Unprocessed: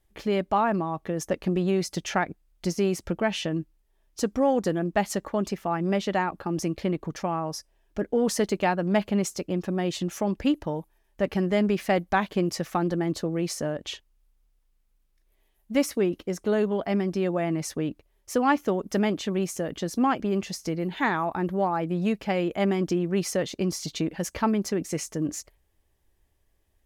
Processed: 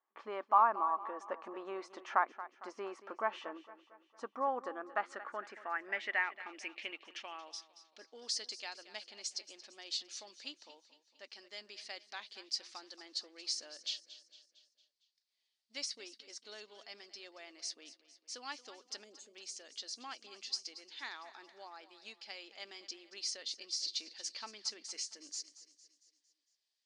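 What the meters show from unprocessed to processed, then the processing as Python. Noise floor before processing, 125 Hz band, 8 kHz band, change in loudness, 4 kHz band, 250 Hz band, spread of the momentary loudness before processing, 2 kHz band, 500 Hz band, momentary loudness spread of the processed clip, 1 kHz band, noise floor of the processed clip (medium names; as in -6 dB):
-68 dBFS, under -40 dB, -8.5 dB, -13.0 dB, -3.0 dB, -30.0 dB, 7 LU, -9.0 dB, -20.0 dB, 17 LU, -8.5 dB, -83 dBFS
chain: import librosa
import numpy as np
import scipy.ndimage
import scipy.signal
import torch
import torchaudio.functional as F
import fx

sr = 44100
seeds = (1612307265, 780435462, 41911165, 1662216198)

p1 = fx.brickwall_bandpass(x, sr, low_hz=210.0, high_hz=10000.0)
p2 = fx.rider(p1, sr, range_db=4, speed_s=2.0)
p3 = fx.spec_box(p2, sr, start_s=19.03, length_s=0.32, low_hz=640.0, high_hz=6300.0, gain_db=-22)
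p4 = p3 + fx.echo_feedback(p3, sr, ms=228, feedback_pct=51, wet_db=-15.5, dry=0)
p5 = fx.filter_sweep_bandpass(p4, sr, from_hz=1100.0, to_hz=4600.0, start_s=4.6, end_s=8.31, q=4.6)
y = F.gain(torch.from_numpy(p5), 3.0).numpy()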